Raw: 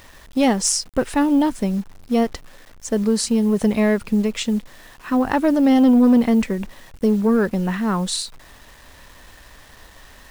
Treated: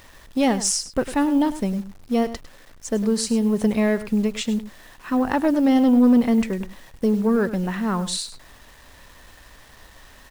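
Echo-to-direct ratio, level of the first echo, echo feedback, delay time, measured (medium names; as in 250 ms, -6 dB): -14.0 dB, -14.0 dB, no regular repeats, 102 ms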